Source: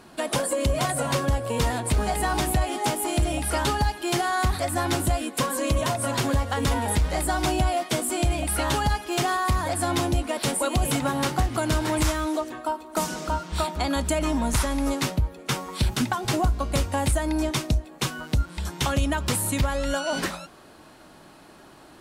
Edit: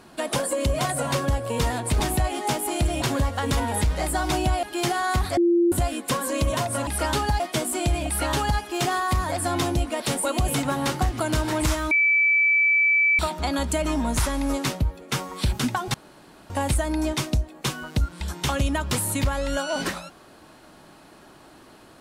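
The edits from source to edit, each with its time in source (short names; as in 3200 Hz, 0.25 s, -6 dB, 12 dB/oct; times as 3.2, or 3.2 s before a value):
2–2.37 cut
3.39–3.92 swap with 6.16–7.77
4.66–5.01 bleep 344 Hz -15.5 dBFS
12.28–13.56 bleep 2310 Hz -16 dBFS
16.31–16.87 room tone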